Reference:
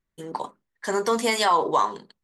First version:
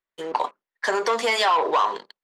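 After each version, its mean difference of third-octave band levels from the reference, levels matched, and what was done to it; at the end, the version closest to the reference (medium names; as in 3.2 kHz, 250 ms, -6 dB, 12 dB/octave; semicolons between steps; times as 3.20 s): 5.5 dB: waveshaping leveller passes 2; compression, threshold -19 dBFS, peak gain reduction 6 dB; three-band isolator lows -21 dB, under 400 Hz, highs -15 dB, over 5.2 kHz; trim +2.5 dB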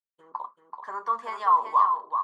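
12.0 dB: expander -43 dBFS; band-pass filter 1.1 kHz, Q 7.8; on a send: delay 383 ms -6.5 dB; on the sum: trim +4.5 dB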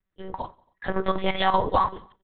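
8.5 dB: monotone LPC vocoder at 8 kHz 190 Hz; square tremolo 5.2 Hz, depth 60%, duty 80%; feedback delay 91 ms, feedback 52%, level -24 dB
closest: first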